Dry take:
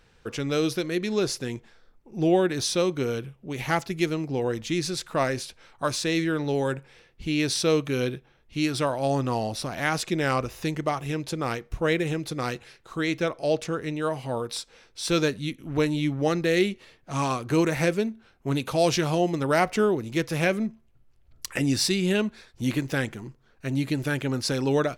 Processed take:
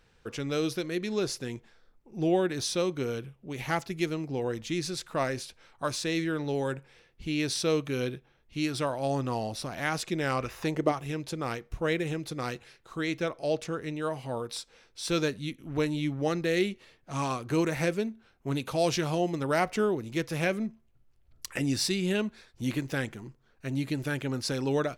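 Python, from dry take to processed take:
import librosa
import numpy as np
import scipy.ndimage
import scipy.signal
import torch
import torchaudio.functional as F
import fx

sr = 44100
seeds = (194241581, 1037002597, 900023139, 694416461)

y = fx.peak_eq(x, sr, hz=fx.line((10.4, 2600.0), (10.91, 310.0)), db=10.5, octaves=1.6, at=(10.4, 10.91), fade=0.02)
y = y * librosa.db_to_amplitude(-4.5)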